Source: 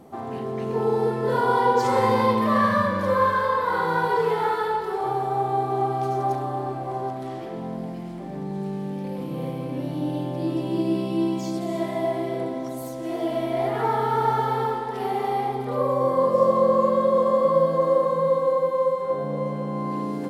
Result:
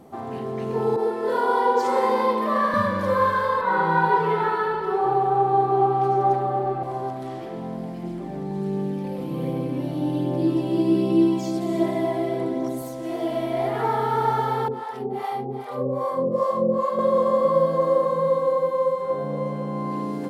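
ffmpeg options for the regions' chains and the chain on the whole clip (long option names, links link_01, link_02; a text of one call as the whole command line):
ffmpeg -i in.wav -filter_complex "[0:a]asettb=1/sr,asplit=3[link_01][link_02][link_03];[link_01]atrim=end=0.964[link_04];[link_02]atrim=start=0.96:end=2.74,asetpts=PTS-STARTPTS,afade=type=in:duration=0.004:curve=qsin,afade=type=out:start_time=1.776:duration=0.004:curve=qsin,highpass=frequency=250:width=0.5412,highpass=frequency=250:width=1.3066,adynamicequalizer=threshold=0.0316:dfrequency=1500:dqfactor=0.7:tfrequency=1500:tqfactor=0.7:attack=5:release=100:ratio=0.375:range=2:mode=cutabove:tftype=highshelf[link_05];[link_03]atrim=start=2.736[link_06];[link_04][link_05]acrossfade=duration=0.004:curve1=hsin:curve2=qsin[link_07];[link_07][link_06]acrossfade=duration=0.004:curve1=qsin:curve2=hsin,asettb=1/sr,asplit=3[link_08][link_09][link_10];[link_08]atrim=end=3.614[link_11];[link_09]atrim=start=3.61:end=6.83,asetpts=PTS-STARTPTS,afade=type=in:duration=0.004:curve=qsin,afade=type=out:start_time=3.216:duration=0.004:curve=qsin,bass=frequency=250:gain=0,treble=frequency=4000:gain=-12,aecho=1:1:5.3:0.95,atrim=end_sample=142002[link_12];[link_10]atrim=start=6.826[link_13];[link_11][link_12]acrossfade=duration=0.004:curve1=hsin:curve2=qsin[link_14];[link_14][link_13]acrossfade=duration=0.004:curve1=qsin:curve2=hsin,asettb=1/sr,asplit=3[link_15][link_16][link_17];[link_15]atrim=end=8.034[link_18];[link_16]atrim=start=8.03:end=12.82,asetpts=PTS-STARTPTS,afade=type=in:duration=0.004:curve=qsin,afade=type=out:start_time=4.786:duration=0.004:curve=qsin,equalizer=frequency=350:width=2.1:gain=5.5,aphaser=in_gain=1:out_gain=1:delay=1.6:decay=0.27:speed=1.3:type=triangular[link_19];[link_17]atrim=start=12.816[link_20];[link_18][link_19]acrossfade=duration=0.004:curve1=hsin:curve2=qsin[link_21];[link_21][link_20]acrossfade=duration=0.004:curve1=qsin:curve2=hsin,asettb=1/sr,asplit=3[link_22][link_23][link_24];[link_22]atrim=end=14.684[link_25];[link_23]atrim=start=14.68:end=16.99,asetpts=PTS-STARTPTS,afade=type=in:duration=0.004:curve=qsin,afade=type=out:start_time=2.306:duration=0.004:curve=qsin,highpass=130,lowshelf=frequency=350:gain=7,acrossover=split=570[link_26][link_27];[link_26]aeval=exprs='val(0)*(1-1/2+1/2*cos(2*PI*2.5*n/s))':channel_layout=same[link_28];[link_27]aeval=exprs='val(0)*(1-1/2-1/2*cos(2*PI*2.5*n/s))':channel_layout=same[link_29];[link_28][link_29]amix=inputs=2:normalize=0[link_30];[link_24]atrim=start=16.986[link_31];[link_25][link_30]acrossfade=duration=0.004:curve1=hsin:curve2=qsin[link_32];[link_32][link_31]acrossfade=duration=0.004:curve1=qsin:curve2=hsin" out.wav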